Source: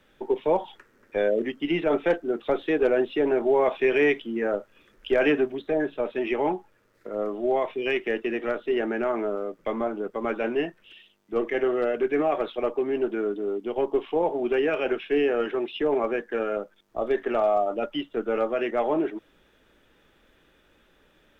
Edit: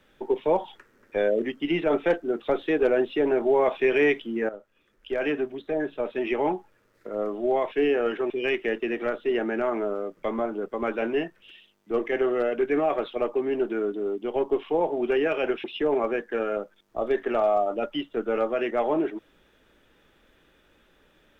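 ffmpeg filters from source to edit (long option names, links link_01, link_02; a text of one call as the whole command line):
ffmpeg -i in.wav -filter_complex "[0:a]asplit=5[link_01][link_02][link_03][link_04][link_05];[link_01]atrim=end=4.49,asetpts=PTS-STARTPTS,afade=type=out:start_time=4.486:duration=0.004:curve=hsin:silence=0.199526[link_06];[link_02]atrim=start=4.49:end=7.722,asetpts=PTS-STARTPTS,afade=type=in:duration=1.82:silence=0.199526[link_07];[link_03]atrim=start=15.058:end=15.642[link_08];[link_04]atrim=start=7.718:end=15.062[link_09];[link_05]atrim=start=15.638[link_10];[link_06][link_07]concat=n=2:v=0:a=1[link_11];[link_11][link_08]acrossfade=duration=0.004:curve1=hsin:curve2=hsin[link_12];[link_12][link_09]acrossfade=duration=0.004:curve1=hsin:curve2=hsin[link_13];[link_13][link_10]acrossfade=duration=0.004:curve1=hsin:curve2=hsin" out.wav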